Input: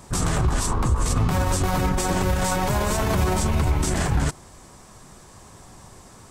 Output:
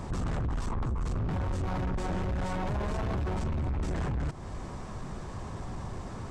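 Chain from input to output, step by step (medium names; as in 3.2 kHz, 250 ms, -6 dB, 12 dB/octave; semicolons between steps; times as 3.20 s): bass shelf 170 Hz +5 dB; in parallel at +3 dB: peak limiter -17 dBFS, peak gain reduction 9 dB; on the sum: compression 3:1, threshold -23 dBFS, peak gain reduction 11.5 dB; saturation -27.5 dBFS, distortion -8 dB; tape spacing loss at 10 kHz 20 dB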